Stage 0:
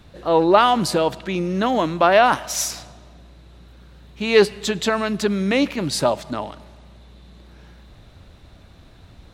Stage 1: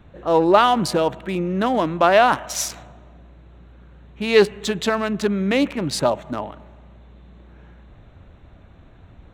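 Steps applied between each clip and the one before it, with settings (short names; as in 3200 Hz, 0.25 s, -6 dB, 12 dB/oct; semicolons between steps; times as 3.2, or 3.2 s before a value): Wiener smoothing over 9 samples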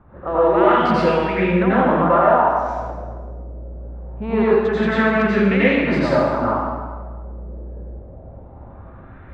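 LFO low-pass sine 0.23 Hz 530–2300 Hz; compressor 3:1, threshold -20 dBFS, peak gain reduction 10.5 dB; plate-style reverb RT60 1.4 s, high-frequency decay 0.8×, pre-delay 75 ms, DRR -9.5 dB; gain -3 dB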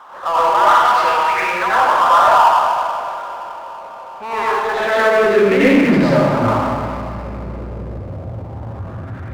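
Schroeder reverb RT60 3.6 s, combs from 27 ms, DRR 12.5 dB; high-pass sweep 970 Hz -> 100 Hz, 4.57–6.56; power-law curve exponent 0.7; gain -2 dB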